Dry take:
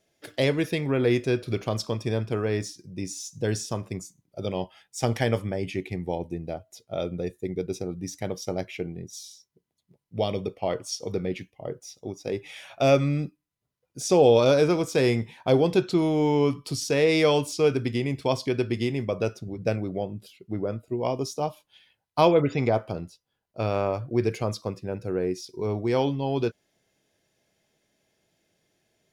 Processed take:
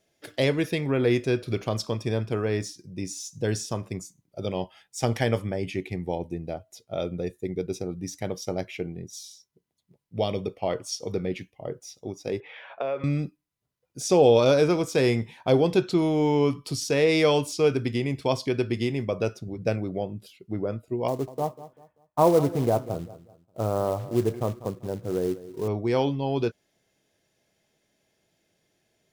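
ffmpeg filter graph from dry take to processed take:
-filter_complex "[0:a]asettb=1/sr,asplit=3[s0][s1][s2];[s0]atrim=end=12.404[s3];[s1]atrim=start=12.4:end=13.04,asetpts=PTS-STARTPTS,afade=t=in:d=0.004:c=qsin,afade=t=out:st=0.636:d=0.004:c=qsin,acompressor=threshold=0.0447:ratio=10:attack=3.2:release=140:knee=1:detection=peak,highpass=f=180:w=0.5412,highpass=f=180:w=1.3066,equalizer=f=190:t=q:w=4:g=-10,equalizer=f=290:t=q:w=4:g=-9,equalizer=f=470:t=q:w=4:g=9,equalizer=f=1000:t=q:w=4:g=8,equalizer=f=1600:t=q:w=4:g=5,equalizer=f=2600:t=q:w=4:g=-3,lowpass=f=3000:w=0.5412,lowpass=f=3000:w=1.3066[s4];[s2]atrim=start=13.036[s5];[s3][s4]acrossfade=d=0.004:c1=hsin:c2=qsin[s6];[s6][s5]acrossfade=d=0.004:c1=qsin:c2=hsin,asettb=1/sr,asplit=3[s7][s8][s9];[s7]atrim=end=21.084[s10];[s8]atrim=start=21.08:end=25.68,asetpts=PTS-STARTPTS,afade=t=in:d=0.004:c=qsin,afade=t=out:st=4.596:d=0.004:c=qsin,lowpass=f=1300:w=0.5412,lowpass=f=1300:w=1.3066,acrusher=bits=5:mode=log:mix=0:aa=0.000001,aecho=1:1:194|388|582:0.158|0.0507|0.0162,atrim=end_sample=202860[s11];[s9]atrim=start=25.676[s12];[s10][s11]acrossfade=d=0.004:c1=hsin:c2=qsin[s13];[s13][s12]acrossfade=d=0.004:c1=qsin:c2=hsin"

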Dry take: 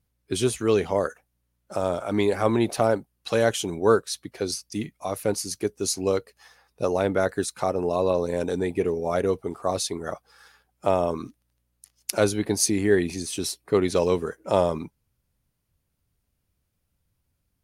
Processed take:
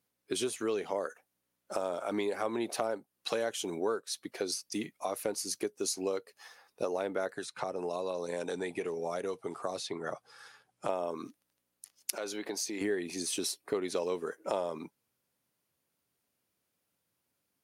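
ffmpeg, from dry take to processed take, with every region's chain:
-filter_complex "[0:a]asettb=1/sr,asplit=3[s0][s1][s2];[s0]atrim=end=7.334[s3];[s1]atrim=start=7.33:end=10.89,asetpts=PTS-STARTPTS,afade=t=in:d=0.004:c=qsin,afade=t=out:st=3.556:d=0.004:c=qsin,lowpass=f=11000:w=0.5412,lowpass=f=11000:w=1.3066,equalizer=f=130:w=2.3:g=13.5,acrossover=split=640|4000[s4][s5][s6];[s4]acompressor=threshold=0.0224:ratio=4[s7];[s5]acompressor=threshold=0.0158:ratio=4[s8];[s6]acompressor=threshold=0.00398:ratio=4[s9];[s7][s8][s9]amix=inputs=3:normalize=0[s10];[s2]atrim=start=10.886[s11];[s3][s10]acrossfade=d=0.004:c1=hsin:c2=qsin[s12];[s12][s11]acrossfade=d=0.004:c1=qsin:c2=hsin,asettb=1/sr,asplit=3[s13][s14][s15];[s13]atrim=end=12.154[s16];[s14]atrim=start=12.15:end=12.81,asetpts=PTS-STARTPTS,afade=t=in:d=0.004:c=qsin,afade=t=out:st=0.656:d=0.004:c=qsin,highpass=f=440:p=1,equalizer=f=10000:t=o:w=0.51:g=-10,acompressor=threshold=0.0251:ratio=3:attack=3.2:release=140:knee=1:detection=peak[s17];[s15]atrim=start=12.806[s18];[s16][s17]acrossfade=d=0.004:c1=hsin:c2=qsin[s19];[s19][s18]acrossfade=d=0.004:c1=qsin:c2=hsin,highpass=280,acompressor=threshold=0.0282:ratio=4"

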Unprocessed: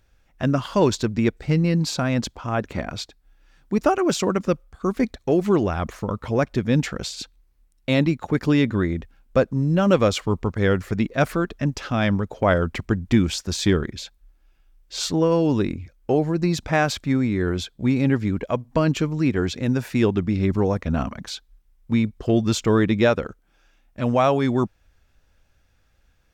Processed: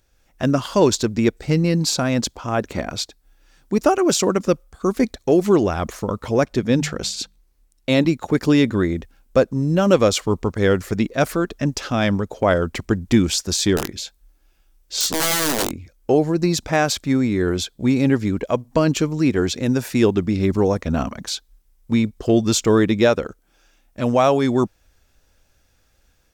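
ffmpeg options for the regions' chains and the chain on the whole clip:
-filter_complex "[0:a]asettb=1/sr,asplit=3[s0][s1][s2];[s0]atrim=end=6.464[s3];[s1]atrim=start=6.46:end=8.05,asetpts=PTS-STARTPTS,afade=t=in:d=0.004:c=qsin,afade=t=out:st=1.586:d=0.004:c=qsin,highshelf=f=8700:g=-5,bandreject=f=50:t=h:w=6,bandreject=f=100:t=h:w=6,bandreject=f=150:t=h:w=6,bandreject=f=200:t=h:w=6[s4];[s2]atrim=start=8.046[s5];[s3][s4]acrossfade=d=0.004:c1=hsin:c2=qsin[s6];[s6][s5]acrossfade=d=0.004:c1=qsin:c2=hsin,asettb=1/sr,asplit=3[s7][s8][s9];[s7]atrim=end=13.774[s10];[s8]atrim=start=13.77:end=15.71,asetpts=PTS-STARTPTS,afade=t=in:d=0.004:c=qsin,afade=t=out:st=1.936:d=0.004:c=qsin,aeval=exprs='(mod(6.68*val(0)+1,2)-1)/6.68':c=same,asplit=2[s11][s12];[s12]adelay=20,volume=0.282[s13];[s11][s13]amix=inputs=2:normalize=0,atrim=end_sample=85554[s14];[s9]atrim=start=15.706[s15];[s10][s14]acrossfade=d=0.004:c1=hsin:c2=qsin[s16];[s16][s15]acrossfade=d=0.004:c1=qsin:c2=hsin,bass=f=250:g=-12,treble=f=4000:g=9,dynaudnorm=f=120:g=3:m=1.58,lowshelf=f=370:g=11.5,volume=0.708"

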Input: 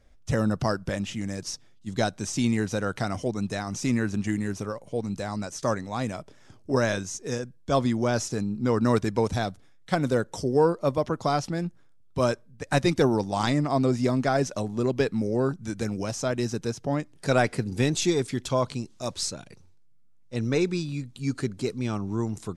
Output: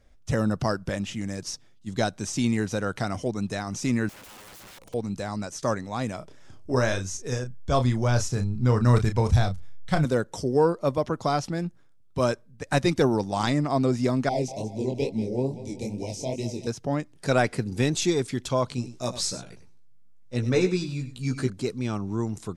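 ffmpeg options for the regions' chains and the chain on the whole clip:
-filter_complex "[0:a]asettb=1/sr,asplit=3[s0][s1][s2];[s0]atrim=end=4.094[s3];[s1]atrim=start=4.09:end=4.94,asetpts=PTS-STARTPTS,afade=t=in:d=0.004:c=qsin,afade=t=out:st=0.846:d=0.004:c=qsin,equalizer=f=1500:t=o:w=1:g=-14,acompressor=threshold=0.0282:ratio=8:attack=3.2:release=140:knee=1:detection=peak,aeval=exprs='(mod(126*val(0)+1,2)-1)/126':c=same[s4];[s2]atrim=start=4.936[s5];[s3][s4]acrossfade=d=0.004:c1=hsin:c2=qsin[s6];[s6][s5]acrossfade=d=0.004:c1=qsin:c2=hsin,asettb=1/sr,asplit=3[s7][s8][s9];[s7]atrim=end=6.184[s10];[s8]atrim=start=6.18:end=10.05,asetpts=PTS-STARTPTS,afade=t=in:d=0.004:c=qsin,afade=t=out:st=3.866:d=0.004:c=qsin,asubboost=boost=10.5:cutoff=96,asplit=2[s11][s12];[s12]adelay=32,volume=0.398[s13];[s11][s13]amix=inputs=2:normalize=0,atrim=end_sample=170667[s14];[s9]atrim=start=10.046[s15];[s10][s14]acrossfade=d=0.004:c1=hsin:c2=qsin[s16];[s16][s15]acrossfade=d=0.004:c1=qsin:c2=hsin,asettb=1/sr,asplit=3[s17][s18][s19];[s17]atrim=end=14.294[s20];[s18]atrim=start=14.29:end=16.67,asetpts=PTS-STARTPTS,afade=t=in:d=0.004:c=qsin,afade=t=out:st=2.376:d=0.004:c=qsin,asuperstop=centerf=1400:order=12:qfactor=1.3,aecho=1:1:188|376|564|752|940:0.224|0.116|0.0605|0.0315|0.0164,atrim=end_sample=104958,flanger=delay=17.5:depth=7.1:speed=2.3[s21];[s19]atrim=start=16.666[s22];[s20][s21]acrossfade=d=0.004:c1=hsin:c2=qsin[s23];[s23][s22]acrossfade=d=0.004:c1=qsin:c2=hsin,asettb=1/sr,asplit=3[s24][s25][s26];[s24]atrim=end=18.764[s27];[s25]atrim=start=18.76:end=21.5,asetpts=PTS-STARTPTS,afade=t=in:d=0.004:c=qsin,afade=t=out:st=2.736:d=0.004:c=qsin,asplit=2[s28][s29];[s29]adelay=16,volume=0.631[s30];[s28][s30]amix=inputs=2:normalize=0,atrim=end_sample=120834,aecho=1:1:98:0.237,atrim=end_sample=120834[s31];[s26]atrim=start=21.496[s32];[s27][s31]acrossfade=d=0.004:c1=hsin:c2=qsin[s33];[s33][s32]acrossfade=d=0.004:c1=qsin:c2=hsin"

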